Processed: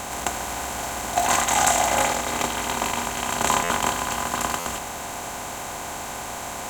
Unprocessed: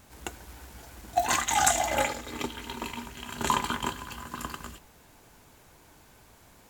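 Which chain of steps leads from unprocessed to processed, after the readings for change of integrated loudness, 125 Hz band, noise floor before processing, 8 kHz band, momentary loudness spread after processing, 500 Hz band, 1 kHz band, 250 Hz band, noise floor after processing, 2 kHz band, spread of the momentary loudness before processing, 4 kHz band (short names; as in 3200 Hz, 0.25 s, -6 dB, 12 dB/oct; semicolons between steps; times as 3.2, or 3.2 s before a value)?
+5.0 dB, +6.0 dB, -57 dBFS, +8.0 dB, 13 LU, +7.5 dB, +7.0 dB, +6.0 dB, -33 dBFS, +7.0 dB, 23 LU, +7.0 dB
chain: per-bin compression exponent 0.4; stuck buffer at 3.63/4.59, samples 512, times 5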